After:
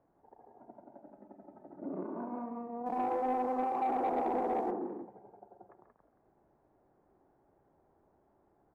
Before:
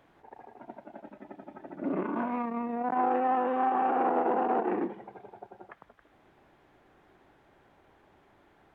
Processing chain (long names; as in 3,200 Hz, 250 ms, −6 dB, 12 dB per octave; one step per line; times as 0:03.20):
Chebyshev low-pass filter 770 Hz, order 2
on a send: loudspeakers that aren't time-aligned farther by 47 metres −9 dB, 62 metres −6 dB
0:02.86–0:04.71: on the sum: leveller curve on the samples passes 1
level −8 dB